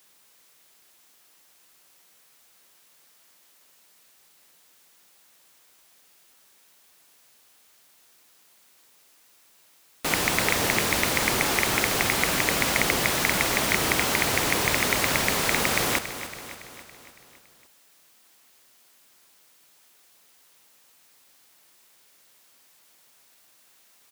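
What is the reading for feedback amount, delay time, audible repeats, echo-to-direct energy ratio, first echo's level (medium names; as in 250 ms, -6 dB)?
58%, 280 ms, 5, -10.0 dB, -12.0 dB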